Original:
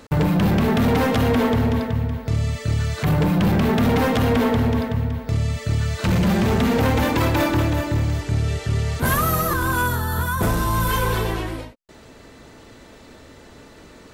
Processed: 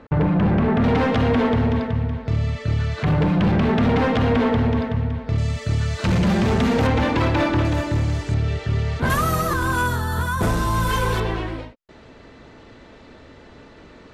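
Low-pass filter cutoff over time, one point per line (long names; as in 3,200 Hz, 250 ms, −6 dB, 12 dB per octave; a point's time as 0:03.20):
2,000 Hz
from 0:00.84 3,800 Hz
from 0:05.38 7,600 Hz
from 0:06.87 4,300 Hz
from 0:07.65 8,100 Hz
from 0:08.34 4,000 Hz
from 0:09.10 8,700 Hz
from 0:11.20 3,900 Hz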